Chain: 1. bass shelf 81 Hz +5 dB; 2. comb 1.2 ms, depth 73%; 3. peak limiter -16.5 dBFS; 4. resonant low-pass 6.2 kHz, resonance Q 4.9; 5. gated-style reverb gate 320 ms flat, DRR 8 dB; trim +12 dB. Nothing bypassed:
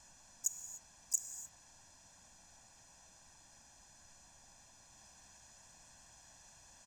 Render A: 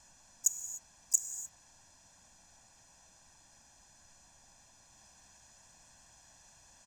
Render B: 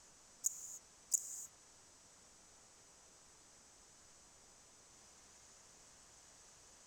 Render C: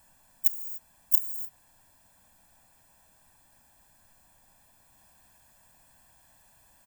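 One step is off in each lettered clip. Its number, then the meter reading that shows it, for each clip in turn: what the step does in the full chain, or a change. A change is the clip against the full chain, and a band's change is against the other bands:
3, mean gain reduction 3.0 dB; 2, 500 Hz band +3.5 dB; 4, momentary loudness spread change -8 LU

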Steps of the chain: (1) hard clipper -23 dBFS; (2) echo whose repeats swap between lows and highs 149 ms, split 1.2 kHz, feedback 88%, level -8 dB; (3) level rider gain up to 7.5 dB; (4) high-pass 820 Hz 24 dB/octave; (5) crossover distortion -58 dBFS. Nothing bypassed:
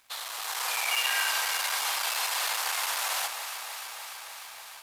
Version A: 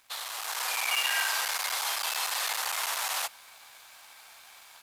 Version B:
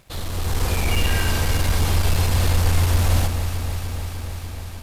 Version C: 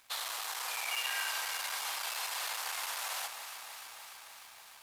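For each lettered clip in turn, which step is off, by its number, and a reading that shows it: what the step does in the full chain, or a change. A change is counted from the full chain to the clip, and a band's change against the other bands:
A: 2, momentary loudness spread change -7 LU; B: 4, 500 Hz band +13.5 dB; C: 3, momentary loudness spread change +1 LU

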